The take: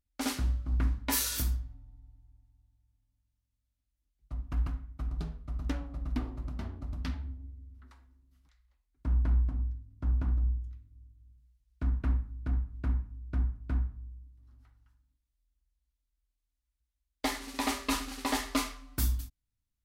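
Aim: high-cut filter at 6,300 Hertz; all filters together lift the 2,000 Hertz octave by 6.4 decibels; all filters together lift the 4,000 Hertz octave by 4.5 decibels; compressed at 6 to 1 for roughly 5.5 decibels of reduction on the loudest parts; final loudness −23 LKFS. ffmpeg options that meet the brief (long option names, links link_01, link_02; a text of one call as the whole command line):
ffmpeg -i in.wav -af "lowpass=6300,equalizer=frequency=2000:width_type=o:gain=6.5,equalizer=frequency=4000:width_type=o:gain=4.5,acompressor=threshold=-29dB:ratio=6,volume=13.5dB" out.wav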